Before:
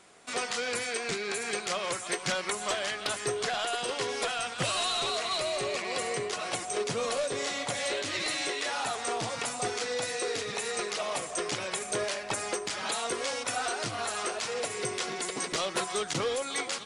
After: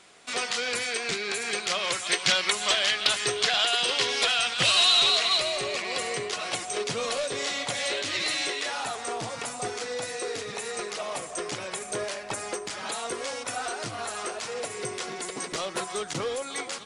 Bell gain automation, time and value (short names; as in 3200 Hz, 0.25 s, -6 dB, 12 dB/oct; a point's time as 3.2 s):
bell 3500 Hz 2 oct
1.55 s +6 dB
2.18 s +12.5 dB
5.18 s +12.5 dB
5.63 s +5 dB
8.41 s +5 dB
9.08 s -2 dB